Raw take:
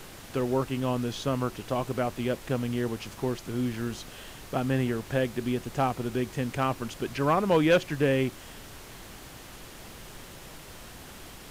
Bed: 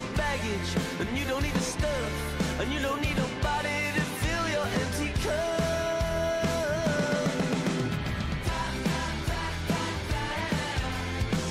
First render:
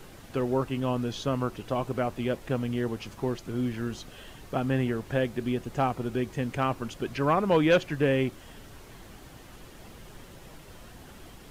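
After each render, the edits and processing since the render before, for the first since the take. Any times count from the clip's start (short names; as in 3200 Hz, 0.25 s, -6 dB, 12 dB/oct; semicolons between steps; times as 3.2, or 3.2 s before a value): denoiser 7 dB, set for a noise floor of -46 dBFS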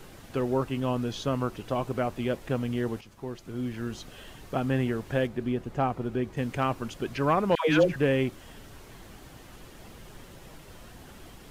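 3.01–4.07 fade in, from -12 dB; 5.27–6.37 high shelf 3000 Hz -9.5 dB; 7.55–7.96 dispersion lows, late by 0.14 s, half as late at 680 Hz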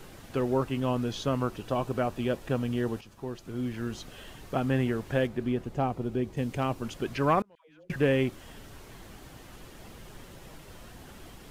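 1.54–3.47 notch 2100 Hz; 5.69–6.84 bell 1500 Hz -6 dB 1.5 oct; 7.4–7.9 flipped gate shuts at -22 dBFS, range -35 dB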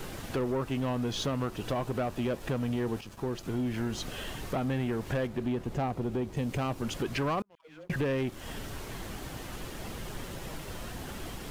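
compressor 3:1, threshold -35 dBFS, peak gain reduction 12 dB; sample leveller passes 2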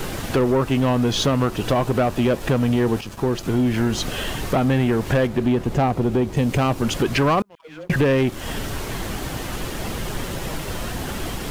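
gain +12 dB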